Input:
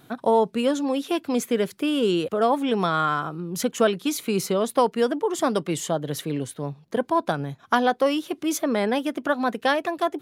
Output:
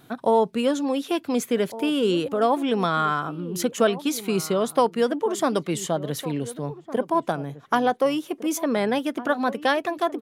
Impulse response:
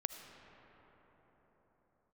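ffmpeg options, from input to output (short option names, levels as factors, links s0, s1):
-filter_complex "[0:a]asettb=1/sr,asplit=3[s0][s1][s2];[s0]atrim=end=6.704[s3];[s1]atrim=start=6.7:end=8.62,asetpts=PTS-STARTPTS,afade=t=in:d=0.004:c=qsin,afade=t=out:st=1.916:d=0.004:c=qsin,equalizer=f=100:t=o:w=0.67:g=-10,equalizer=f=1600:t=o:w=0.67:g=-3,equalizer=f=4000:t=o:w=0.67:g=-6[s4];[s2]atrim=start=8.616[s5];[s3][s4]acrossfade=d=0.004:c1=hsin:c2=qsin[s6];[s6][s5]acrossfade=d=0.004:c1=qsin:c2=hsin,asplit=2[s7][s8];[s8]adelay=1458,volume=0.178,highshelf=f=4000:g=-32.8[s9];[s7][s9]amix=inputs=2:normalize=0"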